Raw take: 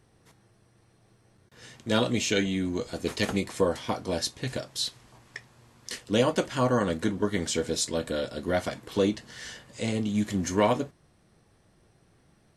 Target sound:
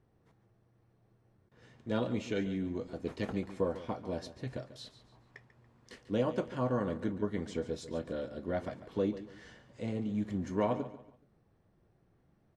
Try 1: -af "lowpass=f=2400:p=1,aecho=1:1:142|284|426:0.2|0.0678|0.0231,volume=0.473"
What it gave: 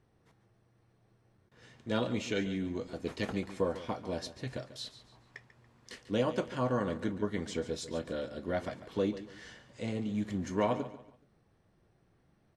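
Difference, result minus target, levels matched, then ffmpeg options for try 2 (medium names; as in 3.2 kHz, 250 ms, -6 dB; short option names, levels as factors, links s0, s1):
2 kHz band +3.5 dB
-af "lowpass=f=1000:p=1,aecho=1:1:142|284|426:0.2|0.0678|0.0231,volume=0.473"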